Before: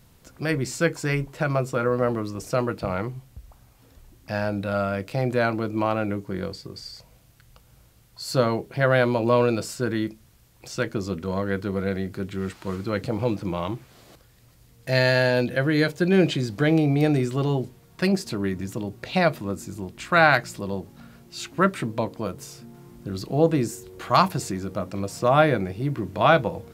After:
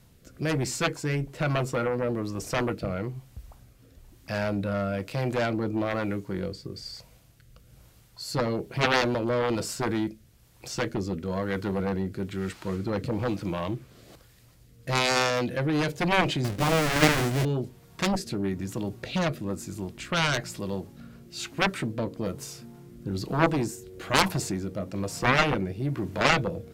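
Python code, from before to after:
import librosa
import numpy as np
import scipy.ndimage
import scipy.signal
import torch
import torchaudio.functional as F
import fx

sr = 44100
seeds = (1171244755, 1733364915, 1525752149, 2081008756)

y = fx.halfwave_hold(x, sr, at=(16.44, 17.45))
y = fx.rotary(y, sr, hz=1.1)
y = fx.cheby_harmonics(y, sr, harmonics=(3, 7), levels_db=(-20, -10), full_scale_db=-4.5)
y = y * 10.0 ** (-2.0 / 20.0)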